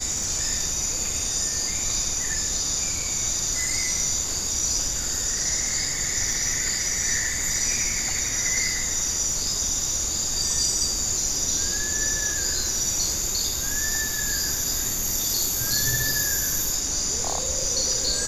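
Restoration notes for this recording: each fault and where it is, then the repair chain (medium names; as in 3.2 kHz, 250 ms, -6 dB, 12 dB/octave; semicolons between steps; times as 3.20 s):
crackle 26 per s -30 dBFS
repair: de-click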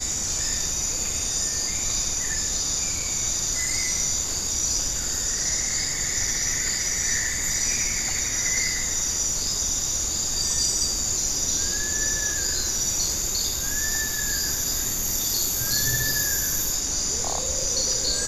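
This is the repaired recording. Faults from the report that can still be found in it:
nothing left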